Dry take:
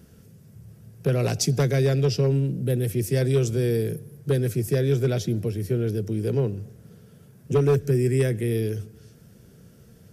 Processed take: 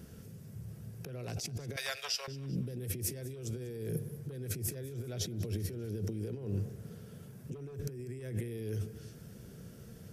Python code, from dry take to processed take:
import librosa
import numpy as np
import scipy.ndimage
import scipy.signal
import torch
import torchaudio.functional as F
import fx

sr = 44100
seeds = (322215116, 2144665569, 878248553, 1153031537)

y = fx.bessel_highpass(x, sr, hz=1200.0, order=8, at=(1.76, 2.28))
y = fx.over_compress(y, sr, threshold_db=-32.0, ratio=-1.0)
y = fx.echo_feedback(y, sr, ms=195, feedback_pct=45, wet_db=-19.0)
y = y * 10.0 ** (-7.0 / 20.0)